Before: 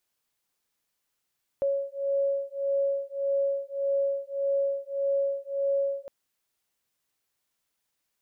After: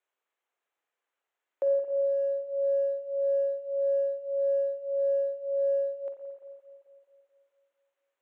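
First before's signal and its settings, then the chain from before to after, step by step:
two tones that beat 554 Hz, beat 1.7 Hz, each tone −28 dBFS 4.46 s
adaptive Wiener filter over 9 samples
high-pass filter 370 Hz 24 dB per octave
spring reverb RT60 2.6 s, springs 43/56 ms, chirp 75 ms, DRR 3.5 dB

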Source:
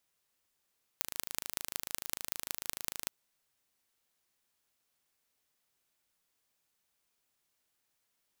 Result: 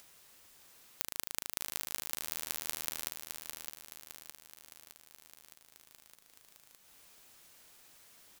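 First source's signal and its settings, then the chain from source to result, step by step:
impulse train 26.7 per second, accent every 5, −5 dBFS 2.07 s
on a send: repeating echo 613 ms, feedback 50%, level −6 dB
on the sum: upward compression, threshold −43 dBFS

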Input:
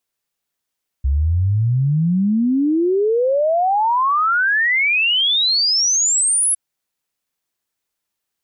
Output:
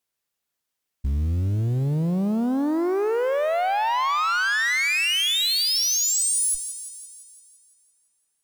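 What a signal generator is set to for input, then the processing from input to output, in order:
exponential sine sweep 65 Hz → 11,000 Hz 5.51 s −13.5 dBFS
tube saturation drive 21 dB, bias 0.55
floating-point word with a short mantissa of 4 bits
on a send: feedback echo with a high-pass in the loop 170 ms, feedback 61%, high-pass 560 Hz, level −10.5 dB

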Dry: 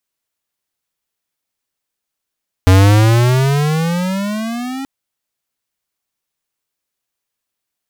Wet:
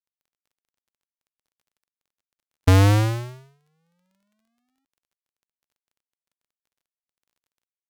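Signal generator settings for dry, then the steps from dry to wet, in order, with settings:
pitch glide with a swell square, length 2.18 s, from 91.5 Hz, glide +19 semitones, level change −17.5 dB, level −6.5 dB
noise gate −10 dBFS, range −54 dB
downward compressor, threshold −13 dBFS
surface crackle 22 per second −55 dBFS

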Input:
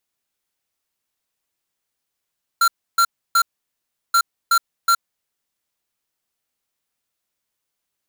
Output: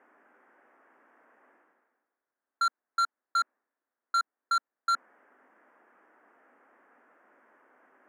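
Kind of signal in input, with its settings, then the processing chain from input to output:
beeps in groups square 1,370 Hz, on 0.07 s, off 0.30 s, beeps 3, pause 0.72 s, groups 2, −14.5 dBFS
elliptic band-pass filter 250–1,700 Hz, stop band 40 dB
reversed playback
upward compression, threshold −40 dBFS
reversed playback
soft clipping −23 dBFS

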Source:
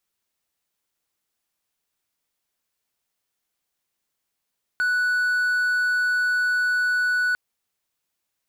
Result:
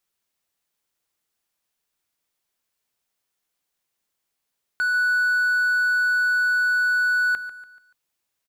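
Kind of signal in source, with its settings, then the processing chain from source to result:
tone triangle 1,480 Hz −17 dBFS 2.55 s
mains-hum notches 50/100/150/200/250/300 Hz
on a send: repeating echo 144 ms, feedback 40%, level −13.5 dB

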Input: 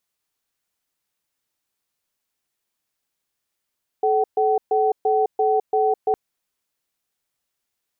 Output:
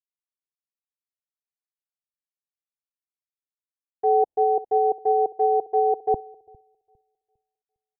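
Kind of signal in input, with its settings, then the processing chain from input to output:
tone pair in a cadence 432 Hz, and 759 Hz, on 0.21 s, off 0.13 s, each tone −18.5 dBFS 2.11 s
elliptic low-pass filter 810 Hz
repeating echo 404 ms, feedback 52%, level −15.5 dB
multiband upward and downward expander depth 100%

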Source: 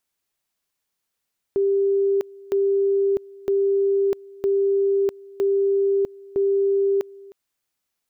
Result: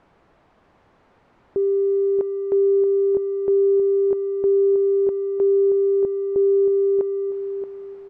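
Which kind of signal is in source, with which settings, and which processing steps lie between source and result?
tone at two levels in turn 395 Hz −16.5 dBFS, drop 23 dB, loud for 0.65 s, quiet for 0.31 s, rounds 6
converter with a step at zero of −39.5 dBFS
low-pass filter 1,000 Hz 12 dB per octave
on a send: repeating echo 628 ms, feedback 27%, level −8.5 dB

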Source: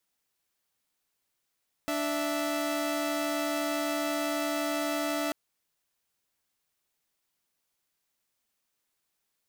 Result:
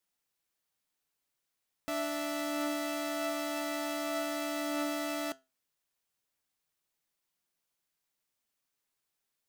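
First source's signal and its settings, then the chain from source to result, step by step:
held notes D4/E5 saw, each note −28.5 dBFS 3.44 s
flanger 0.27 Hz, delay 5.5 ms, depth 2.2 ms, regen +82%

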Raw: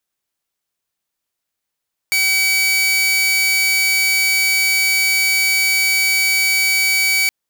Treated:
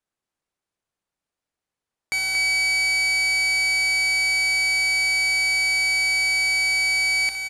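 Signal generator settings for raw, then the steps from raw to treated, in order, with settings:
tone saw 2,280 Hz −11 dBFS 5.17 s
low-pass filter 11,000 Hz 24 dB per octave
high-shelf EQ 2,000 Hz −10.5 dB
loudspeakers that aren't time-aligned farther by 21 metres −12 dB, 79 metres −6 dB

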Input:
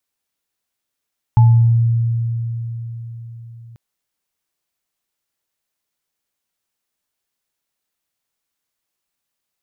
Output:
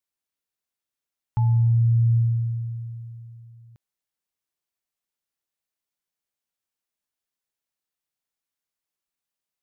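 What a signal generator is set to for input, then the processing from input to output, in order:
inharmonic partials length 2.39 s, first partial 116 Hz, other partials 864 Hz, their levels −13 dB, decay 4.55 s, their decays 0.54 s, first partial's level −5.5 dB
dynamic equaliser 350 Hz, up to +5 dB, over −29 dBFS, Q 0.72
brickwall limiter −15 dBFS
expander for the loud parts 1.5 to 1, over −37 dBFS

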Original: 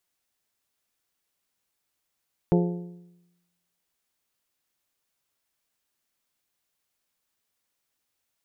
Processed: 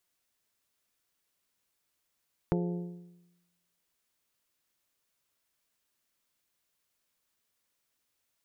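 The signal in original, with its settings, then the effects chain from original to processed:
struck metal bell, lowest mode 175 Hz, modes 6, decay 0.97 s, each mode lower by 3.5 dB, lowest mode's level −17 dB
notch filter 790 Hz, Q 12
downward compressor, threshold −27 dBFS

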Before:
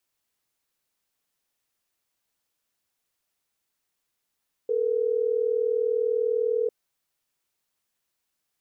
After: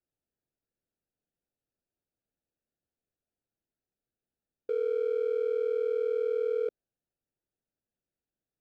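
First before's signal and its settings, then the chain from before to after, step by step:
call progress tone ringback tone, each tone −24.5 dBFS
adaptive Wiener filter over 41 samples
brickwall limiter −23.5 dBFS

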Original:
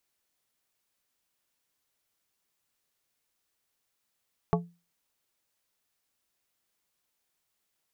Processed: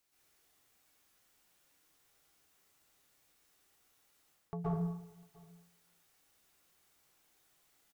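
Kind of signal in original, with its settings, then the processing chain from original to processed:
struck glass plate, lowest mode 172 Hz, decay 0.30 s, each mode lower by 1.5 dB, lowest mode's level −20.5 dB
reversed playback
downward compressor 8 to 1, threshold −40 dBFS
reversed playback
slap from a distant wall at 120 metres, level −24 dB
dense smooth reverb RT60 0.9 s, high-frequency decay 0.55×, pre-delay 110 ms, DRR −9 dB

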